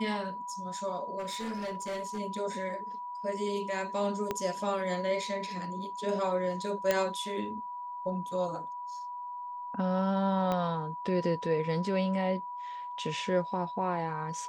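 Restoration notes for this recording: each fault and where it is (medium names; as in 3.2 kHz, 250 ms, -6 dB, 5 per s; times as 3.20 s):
whine 980 Hz -37 dBFS
1.18–2.19 s: clipped -32 dBFS
4.31 s: pop -17 dBFS
6.91 s: pop -12 dBFS
10.52 s: pop -18 dBFS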